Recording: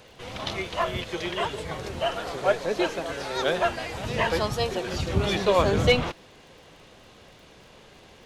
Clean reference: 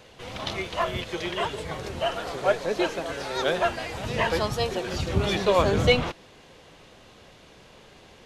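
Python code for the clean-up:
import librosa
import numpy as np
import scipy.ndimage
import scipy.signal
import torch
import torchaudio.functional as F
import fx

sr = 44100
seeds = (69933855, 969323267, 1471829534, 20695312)

y = fx.fix_declip(x, sr, threshold_db=-10.0)
y = fx.fix_declick_ar(y, sr, threshold=6.5)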